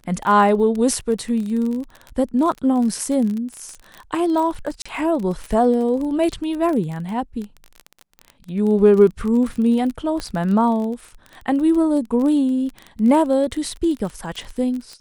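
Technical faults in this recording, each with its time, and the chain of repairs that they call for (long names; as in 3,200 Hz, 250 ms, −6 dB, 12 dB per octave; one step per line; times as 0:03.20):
surface crackle 26 per second −25 dBFS
0:04.82–0:04.86: drop-out 35 ms
0:10.20: click −14 dBFS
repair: click removal
repair the gap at 0:04.82, 35 ms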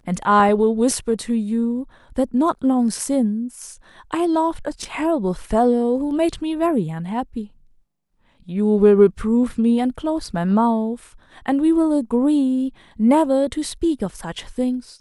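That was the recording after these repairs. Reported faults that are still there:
none of them is left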